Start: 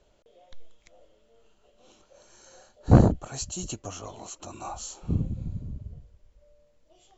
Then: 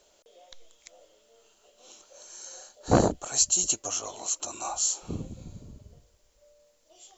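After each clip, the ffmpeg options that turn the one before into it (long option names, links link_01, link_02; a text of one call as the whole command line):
ffmpeg -i in.wav -af "bass=frequency=250:gain=-14,treble=frequency=4000:gain=12,volume=2.5dB" out.wav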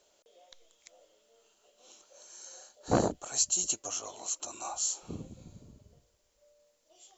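ffmpeg -i in.wav -af "lowshelf=frequency=74:gain=-8.5,volume=-5dB" out.wav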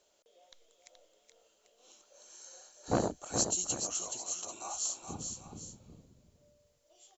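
ffmpeg -i in.wav -af "aecho=1:1:425|791:0.501|0.211,volume=-3.5dB" out.wav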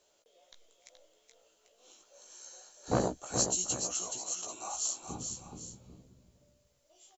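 ffmpeg -i in.wav -filter_complex "[0:a]asplit=2[link_01][link_02];[link_02]adelay=16,volume=-5dB[link_03];[link_01][link_03]amix=inputs=2:normalize=0" out.wav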